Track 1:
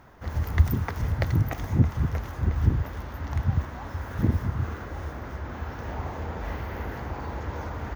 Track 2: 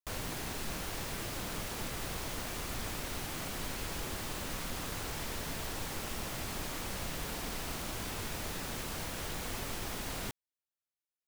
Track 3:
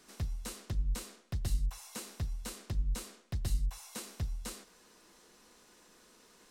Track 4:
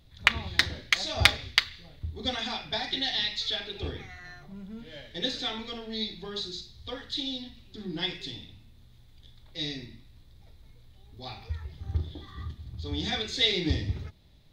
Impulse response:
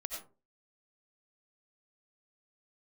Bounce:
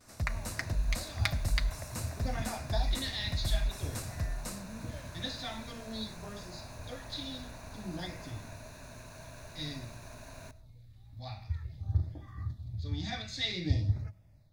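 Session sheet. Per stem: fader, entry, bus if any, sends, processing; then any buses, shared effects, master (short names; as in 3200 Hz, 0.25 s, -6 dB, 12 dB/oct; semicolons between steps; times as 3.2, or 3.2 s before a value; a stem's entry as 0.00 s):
-19.5 dB, 0.60 s, no send, dry
-12.0 dB, 0.20 s, send -14 dB, median filter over 3 samples; ripple EQ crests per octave 1.5, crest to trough 9 dB
+1.5 dB, 0.00 s, no send, gate with hold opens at -53 dBFS
-12.5 dB, 0.00 s, send -20.5 dB, bell 110 Hz +11 dB 0.67 oct; AGC gain up to 7 dB; LFO notch sine 0.51 Hz 380–4100 Hz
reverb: on, RT60 0.35 s, pre-delay 50 ms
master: thirty-one-band EQ 400 Hz -8 dB, 630 Hz +7 dB, 3150 Hz -10 dB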